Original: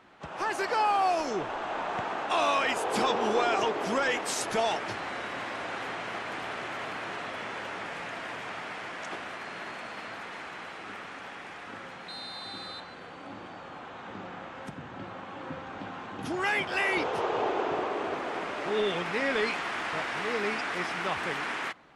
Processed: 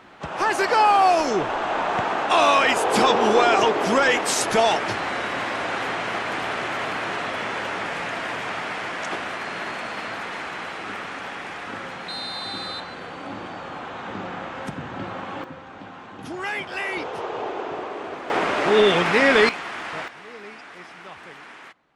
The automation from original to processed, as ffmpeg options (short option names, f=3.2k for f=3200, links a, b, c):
-af "asetnsamples=n=441:p=0,asendcmd='15.44 volume volume -0.5dB;18.3 volume volume 12dB;19.49 volume volume 1dB;20.08 volume volume -9.5dB',volume=9dB"